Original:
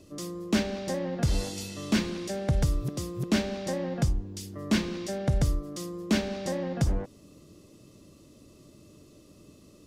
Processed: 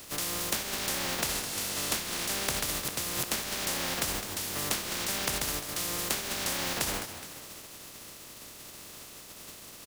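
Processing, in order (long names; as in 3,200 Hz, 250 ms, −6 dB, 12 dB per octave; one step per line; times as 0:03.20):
compressing power law on the bin magnitudes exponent 0.23
downward compressor 12 to 1, threshold −35 dBFS, peak gain reduction 16.5 dB
on a send: echo with shifted repeats 209 ms, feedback 45%, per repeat +45 Hz, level −11 dB
on the sum: level +6.5 dB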